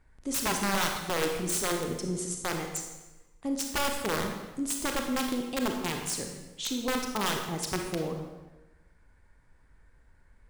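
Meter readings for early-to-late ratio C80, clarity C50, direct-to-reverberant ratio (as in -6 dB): 6.5 dB, 4.0 dB, 2.5 dB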